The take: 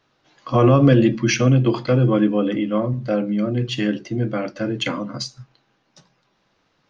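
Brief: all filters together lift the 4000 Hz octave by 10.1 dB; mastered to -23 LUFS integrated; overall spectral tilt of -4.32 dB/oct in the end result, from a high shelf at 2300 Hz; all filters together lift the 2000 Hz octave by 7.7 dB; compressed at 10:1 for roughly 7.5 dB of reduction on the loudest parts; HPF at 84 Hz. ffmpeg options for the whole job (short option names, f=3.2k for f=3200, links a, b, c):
-af "highpass=84,equalizer=f=2k:t=o:g=5,highshelf=f=2.3k:g=4.5,equalizer=f=4k:t=o:g=7.5,acompressor=threshold=-16dB:ratio=10,volume=-1dB"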